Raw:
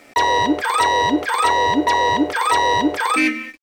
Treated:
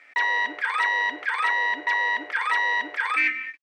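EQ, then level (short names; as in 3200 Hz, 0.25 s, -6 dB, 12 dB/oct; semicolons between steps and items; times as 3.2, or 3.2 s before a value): band-pass 1900 Hz, Q 2.9; +1.5 dB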